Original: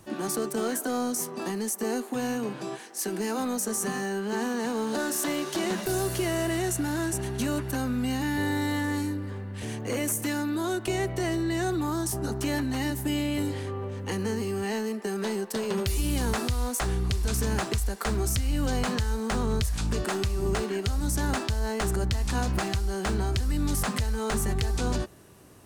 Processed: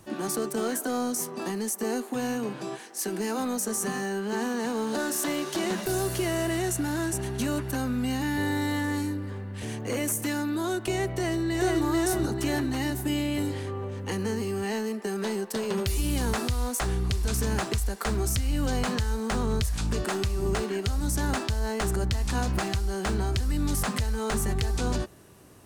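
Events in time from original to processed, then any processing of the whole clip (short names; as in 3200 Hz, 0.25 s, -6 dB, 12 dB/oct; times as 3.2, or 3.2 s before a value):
11.1–11.81 echo throw 0.44 s, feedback 40%, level -1 dB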